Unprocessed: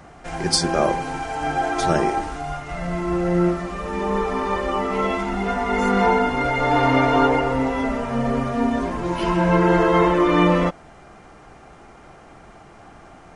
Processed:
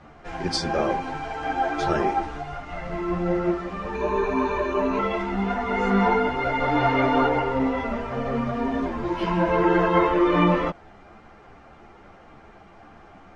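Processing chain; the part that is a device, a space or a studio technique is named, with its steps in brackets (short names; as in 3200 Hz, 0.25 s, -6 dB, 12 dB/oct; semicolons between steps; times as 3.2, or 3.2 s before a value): string-machine ensemble chorus (ensemble effect; LPF 4300 Hz 12 dB/oct); 3.95–4.99 ripple EQ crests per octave 1.5, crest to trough 15 dB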